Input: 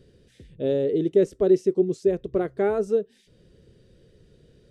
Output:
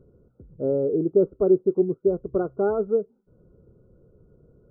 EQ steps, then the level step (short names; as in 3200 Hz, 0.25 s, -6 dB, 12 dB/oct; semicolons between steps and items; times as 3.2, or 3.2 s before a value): brick-wall FIR low-pass 1500 Hz; 0.0 dB